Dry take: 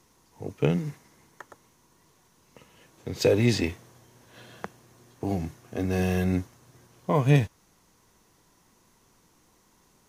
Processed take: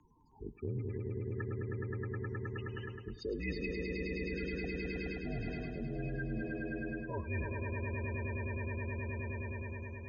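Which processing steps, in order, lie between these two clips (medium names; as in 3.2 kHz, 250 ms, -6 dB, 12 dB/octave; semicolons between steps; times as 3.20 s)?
loudest bins only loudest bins 16; high-order bell 2.2 kHz +14.5 dB; echo with a slow build-up 105 ms, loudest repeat 5, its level -8 dB; frequency shift -50 Hz; reverse; compression 6:1, threshold -35 dBFS, peak gain reduction 19.5 dB; reverse; trim -1 dB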